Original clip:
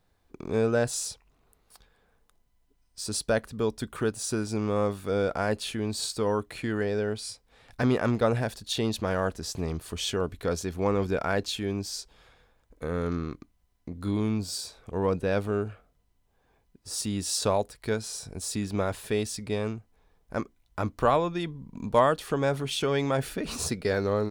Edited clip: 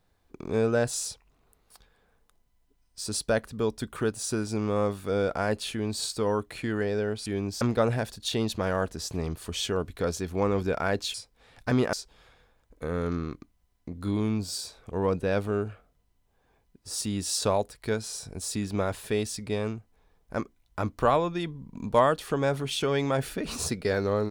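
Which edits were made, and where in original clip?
7.26–8.05 swap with 11.58–11.93

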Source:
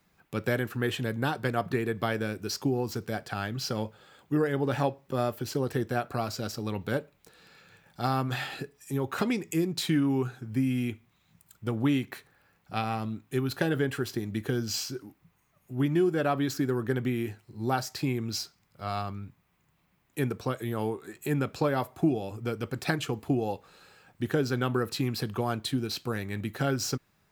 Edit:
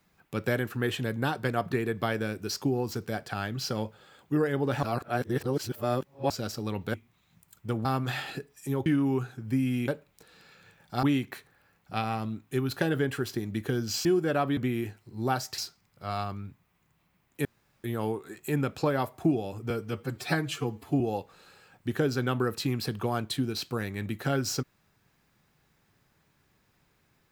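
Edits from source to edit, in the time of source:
4.83–6.3 reverse
6.94–8.09 swap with 10.92–11.83
9.1–9.9 cut
14.85–15.95 cut
16.47–16.99 cut
18–18.36 cut
20.23–20.62 room tone
22.48–23.35 stretch 1.5×

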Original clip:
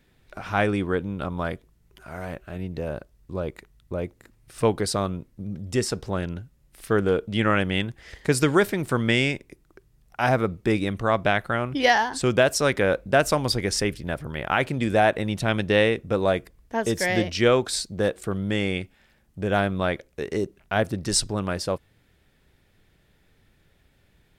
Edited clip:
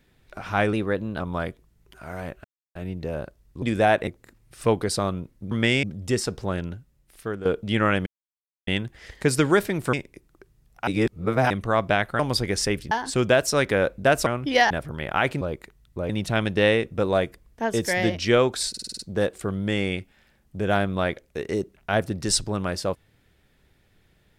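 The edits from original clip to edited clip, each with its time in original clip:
0.73–1.25 speed 110%
2.49 insert silence 0.31 s
3.36–4.04 swap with 14.77–15.22
6.3–7.1 fade out, to -12.5 dB
7.71 insert silence 0.61 s
8.97–9.29 move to 5.48
10.23–10.86 reverse
11.55–11.99 swap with 13.34–14.06
17.82 stutter 0.05 s, 7 plays

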